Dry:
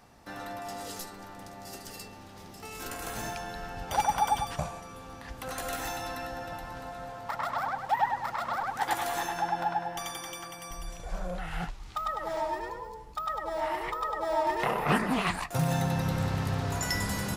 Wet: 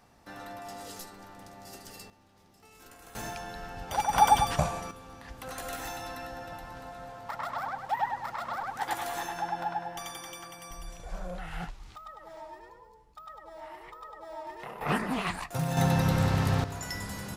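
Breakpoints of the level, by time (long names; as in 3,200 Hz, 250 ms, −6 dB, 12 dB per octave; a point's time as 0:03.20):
−3.5 dB
from 0:02.10 −14 dB
from 0:03.15 −2 dB
from 0:04.13 +6 dB
from 0:04.91 −3 dB
from 0:11.96 −13.5 dB
from 0:14.81 −3 dB
from 0:15.77 +4 dB
from 0:16.64 −6.5 dB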